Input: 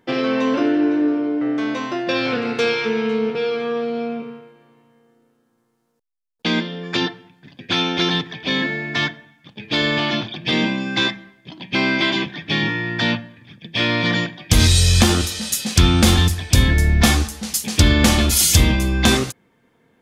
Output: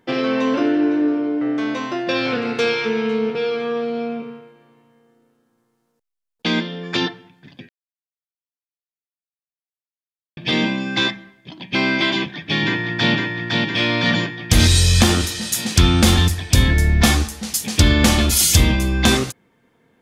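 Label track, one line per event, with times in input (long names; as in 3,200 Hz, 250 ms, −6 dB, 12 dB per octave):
7.690000	10.370000	silence
12.150000	13.130000	delay throw 510 ms, feedback 70%, level −2 dB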